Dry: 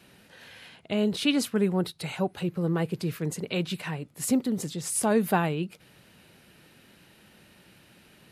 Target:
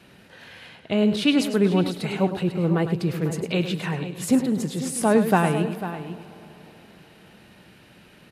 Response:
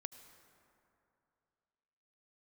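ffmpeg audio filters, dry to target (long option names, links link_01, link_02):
-filter_complex "[0:a]highshelf=frequency=5300:gain=-8.5,aecho=1:1:497:0.237,asplit=2[link_01][link_02];[1:a]atrim=start_sample=2205,asetrate=29106,aresample=44100,adelay=104[link_03];[link_02][link_03]afir=irnorm=-1:irlink=0,volume=-7.5dB[link_04];[link_01][link_04]amix=inputs=2:normalize=0,volume=5dB"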